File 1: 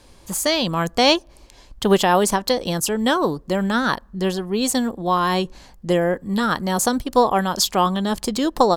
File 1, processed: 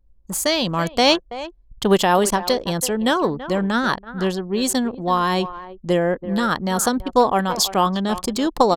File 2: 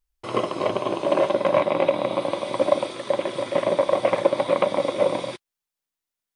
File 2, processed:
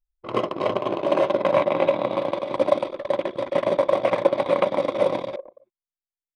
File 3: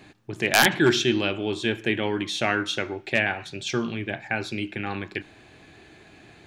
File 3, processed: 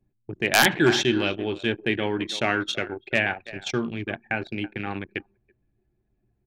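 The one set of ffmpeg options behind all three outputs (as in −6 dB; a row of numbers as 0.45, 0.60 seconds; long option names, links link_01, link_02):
-filter_complex "[0:a]asplit=2[link_01][link_02];[link_02]adelay=330,highpass=300,lowpass=3400,asoftclip=type=hard:threshold=-11dB,volume=-12dB[link_03];[link_01][link_03]amix=inputs=2:normalize=0,anlmdn=39.8"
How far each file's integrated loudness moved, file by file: 0.0, 0.0, 0.0 LU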